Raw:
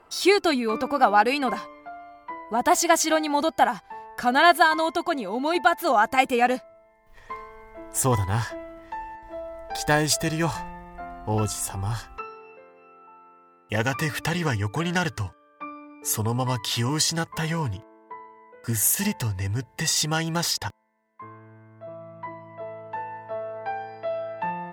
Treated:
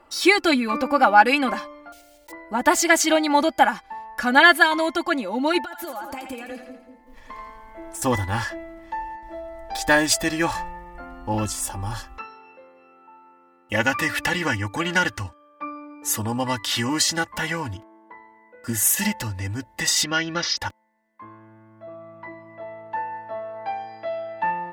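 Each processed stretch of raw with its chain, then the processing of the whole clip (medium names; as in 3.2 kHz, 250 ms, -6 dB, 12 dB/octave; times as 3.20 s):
1.92–2.33 s: block-companded coder 3-bit + static phaser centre 480 Hz, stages 4 + comb 2.2 ms, depth 33%
5.62–8.02 s: compression 16:1, threshold -32 dBFS + two-band feedback delay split 540 Hz, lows 192 ms, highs 84 ms, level -6 dB
20.04–20.57 s: elliptic low-pass 5.9 kHz + peaking EQ 840 Hz -10 dB 0.23 oct
whole clip: dynamic bell 2 kHz, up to +5 dB, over -37 dBFS, Q 1.1; comb 3.5 ms, depth 70%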